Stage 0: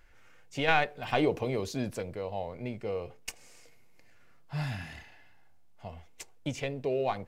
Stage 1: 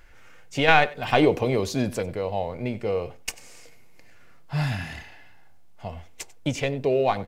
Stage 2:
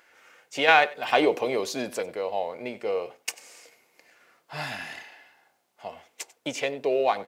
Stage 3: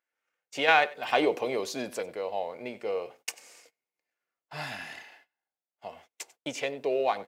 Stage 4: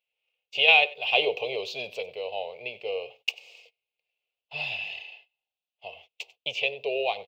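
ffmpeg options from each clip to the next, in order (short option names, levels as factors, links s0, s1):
-af "aecho=1:1:94:0.1,volume=2.51"
-af "highpass=390"
-af "agate=range=0.0501:threshold=0.00316:ratio=16:detection=peak,volume=0.668"
-af "firequalizer=gain_entry='entry(110,0);entry(290,-23);entry(410,0);entry(720,-1);entry(1600,-22);entry(2600,14);entry(5700,-8);entry(10000,-22);entry(15000,-4)':delay=0.05:min_phase=1"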